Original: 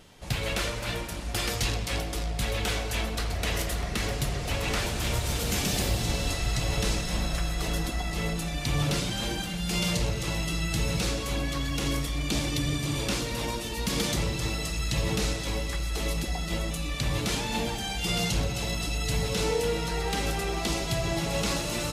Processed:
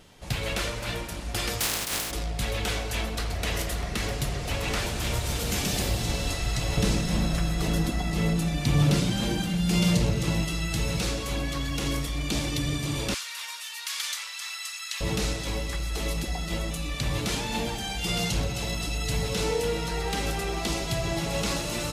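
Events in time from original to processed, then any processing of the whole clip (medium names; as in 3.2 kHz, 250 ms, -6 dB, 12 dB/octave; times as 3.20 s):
1.59–2.10 s: spectral contrast reduction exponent 0.22
6.77–10.45 s: peaking EQ 190 Hz +8 dB 2 oct
13.14–15.01 s: high-pass 1.2 kHz 24 dB/octave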